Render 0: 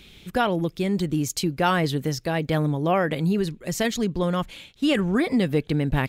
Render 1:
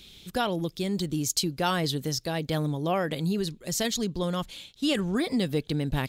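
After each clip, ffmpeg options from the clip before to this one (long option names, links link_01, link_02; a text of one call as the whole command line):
ffmpeg -i in.wav -af "highshelf=frequency=3000:width_type=q:width=1.5:gain=6.5,volume=-5dB" out.wav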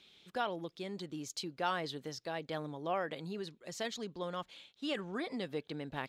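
ffmpeg -i in.wav -af "bandpass=frequency=1100:width_type=q:width=0.54:csg=0,volume=-6dB" out.wav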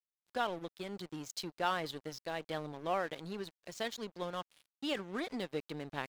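ffmpeg -i in.wav -af "aeval=exprs='sgn(val(0))*max(abs(val(0))-0.00355,0)':channel_layout=same,volume=2dB" out.wav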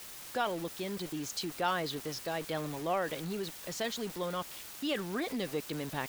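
ffmpeg -i in.wav -af "aeval=exprs='val(0)+0.5*0.0178*sgn(val(0))':channel_layout=same" out.wav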